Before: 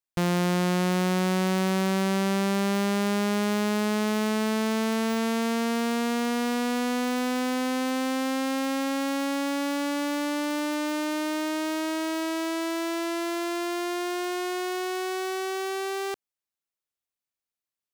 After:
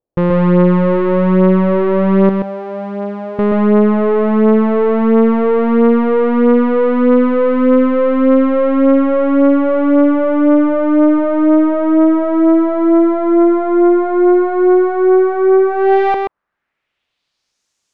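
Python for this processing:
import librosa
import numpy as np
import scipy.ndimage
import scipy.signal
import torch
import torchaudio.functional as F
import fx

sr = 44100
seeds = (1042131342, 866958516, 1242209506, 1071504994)

p1 = fx.tone_stack(x, sr, knobs='10-0-10', at=(2.29, 3.39))
p2 = fx.rider(p1, sr, range_db=4, speed_s=0.5)
p3 = p1 + (p2 * 10.0 ** (3.0 / 20.0))
p4 = fx.filter_sweep_lowpass(p3, sr, from_hz=520.0, to_hz=6600.0, start_s=15.63, end_s=17.62, q=2.4)
p5 = 10.0 ** (-17.5 / 20.0) * np.tanh(p4 / 10.0 ** (-17.5 / 20.0))
p6 = p5 + 10.0 ** (-3.5 / 20.0) * np.pad(p5, (int(129 * sr / 1000.0), 0))[:len(p5)]
y = p6 * 10.0 ** (8.5 / 20.0)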